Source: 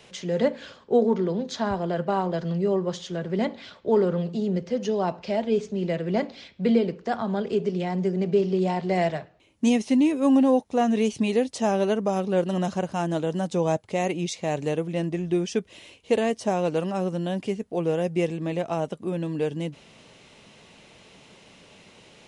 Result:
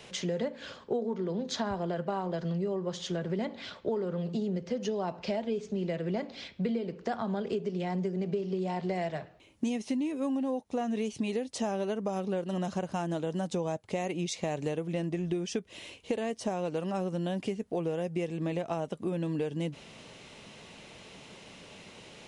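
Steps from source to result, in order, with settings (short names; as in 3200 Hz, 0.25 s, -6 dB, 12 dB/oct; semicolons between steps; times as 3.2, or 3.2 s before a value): compressor 10:1, threshold -30 dBFS, peak gain reduction 15 dB; gain +1.5 dB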